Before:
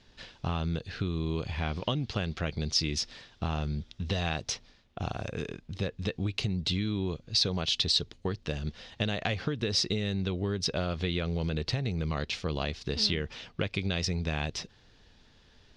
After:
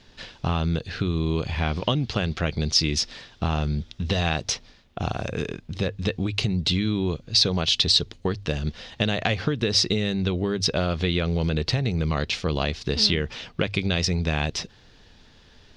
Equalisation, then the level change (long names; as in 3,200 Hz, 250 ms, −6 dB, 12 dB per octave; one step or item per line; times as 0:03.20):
mains-hum notches 50/100 Hz
+7.0 dB